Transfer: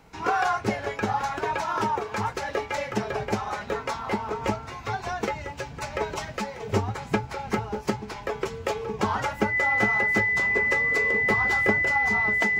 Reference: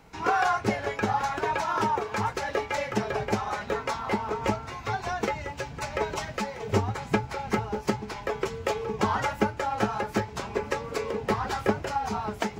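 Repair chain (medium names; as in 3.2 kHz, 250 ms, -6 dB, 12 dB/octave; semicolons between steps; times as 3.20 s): band-stop 2 kHz, Q 30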